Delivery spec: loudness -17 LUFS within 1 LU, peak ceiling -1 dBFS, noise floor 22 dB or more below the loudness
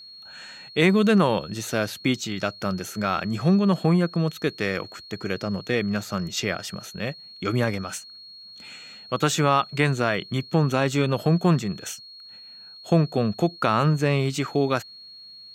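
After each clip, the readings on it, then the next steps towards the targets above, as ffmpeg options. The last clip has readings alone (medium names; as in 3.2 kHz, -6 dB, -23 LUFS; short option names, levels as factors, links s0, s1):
steady tone 4.3 kHz; tone level -42 dBFS; loudness -24.0 LUFS; peak level -5.0 dBFS; loudness target -17.0 LUFS
-> -af "bandreject=f=4300:w=30"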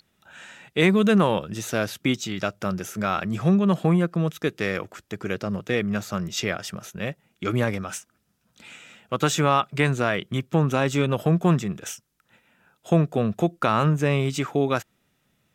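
steady tone not found; loudness -24.0 LUFS; peak level -5.0 dBFS; loudness target -17.0 LUFS
-> -af "volume=2.24,alimiter=limit=0.891:level=0:latency=1"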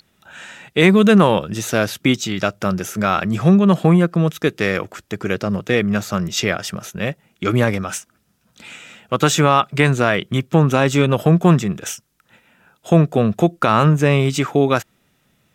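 loudness -17.0 LUFS; peak level -1.0 dBFS; noise floor -63 dBFS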